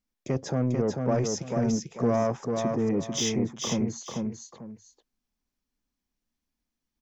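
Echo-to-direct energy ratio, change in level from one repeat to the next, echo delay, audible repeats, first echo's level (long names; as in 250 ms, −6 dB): −3.5 dB, −11.0 dB, 443 ms, 2, −4.0 dB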